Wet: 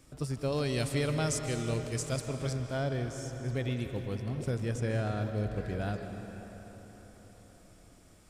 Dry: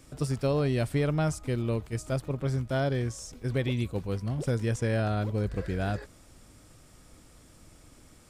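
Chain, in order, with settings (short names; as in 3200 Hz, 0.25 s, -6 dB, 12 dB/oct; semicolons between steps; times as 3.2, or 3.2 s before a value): 0.52–2.53 bell 6600 Hz +12.5 dB 2.5 oct; digital reverb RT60 4.7 s, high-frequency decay 0.65×, pre-delay 0.11 s, DRR 6 dB; gain -5 dB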